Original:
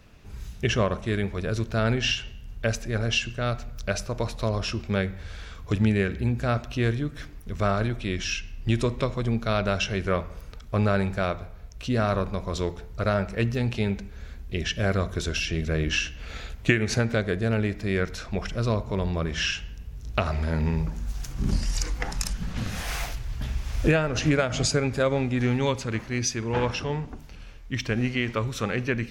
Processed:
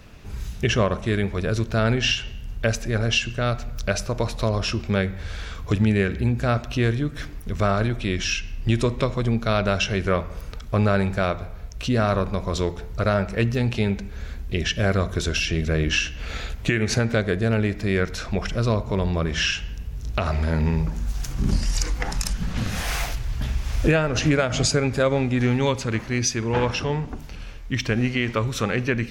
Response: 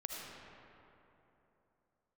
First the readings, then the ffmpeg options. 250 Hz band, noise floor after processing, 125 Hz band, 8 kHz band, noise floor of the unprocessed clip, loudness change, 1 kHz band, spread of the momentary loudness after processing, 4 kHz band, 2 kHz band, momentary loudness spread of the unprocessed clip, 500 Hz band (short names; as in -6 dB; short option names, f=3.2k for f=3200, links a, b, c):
+3.5 dB, -36 dBFS, +3.5 dB, +4.0 dB, -42 dBFS, +3.5 dB, +3.0 dB, 9 LU, +4.0 dB, +3.0 dB, 10 LU, +3.0 dB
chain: -filter_complex "[0:a]asplit=2[a][b];[b]acompressor=threshold=-33dB:ratio=6,volume=-1dB[c];[a][c]amix=inputs=2:normalize=0,alimiter=level_in=9.5dB:limit=-1dB:release=50:level=0:latency=1,volume=-8dB"